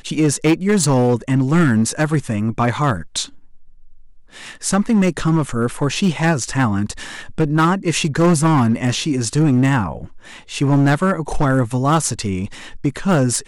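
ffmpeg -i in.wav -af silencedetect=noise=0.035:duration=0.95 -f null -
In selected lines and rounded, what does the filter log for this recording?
silence_start: 3.26
silence_end: 4.36 | silence_duration: 1.10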